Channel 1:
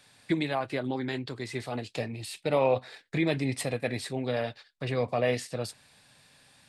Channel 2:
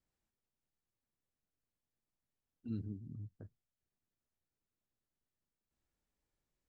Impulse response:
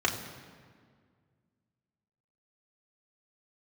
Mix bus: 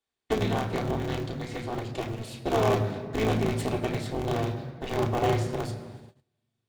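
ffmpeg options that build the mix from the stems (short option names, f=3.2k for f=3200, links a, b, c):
-filter_complex "[0:a]aeval=exprs='0.237*(cos(1*acos(clip(val(0)/0.237,-1,1)))-cos(1*PI/2))+0.0266*(cos(8*acos(clip(val(0)/0.237,-1,1)))-cos(8*PI/2))':c=same,acrusher=bits=10:mix=0:aa=0.000001,aeval=exprs='val(0)*sgn(sin(2*PI*110*n/s))':c=same,volume=-10.5dB,asplit=2[a][b];[b]volume=-4dB[c];[1:a]volume=1dB[d];[2:a]atrim=start_sample=2205[e];[c][e]afir=irnorm=-1:irlink=0[f];[a][d][f]amix=inputs=3:normalize=0,agate=range=-26dB:threshold=-48dB:ratio=16:detection=peak,lowshelf=f=480:g=5"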